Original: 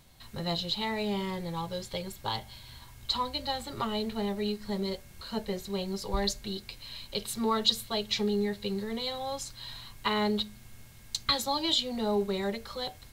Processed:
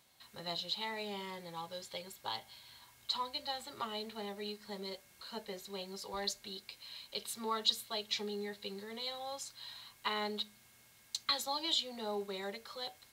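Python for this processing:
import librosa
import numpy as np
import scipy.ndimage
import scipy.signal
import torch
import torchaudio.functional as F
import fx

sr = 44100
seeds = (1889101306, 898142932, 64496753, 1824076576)

y = fx.highpass(x, sr, hz=590.0, slope=6)
y = y * librosa.db_to_amplitude(-5.5)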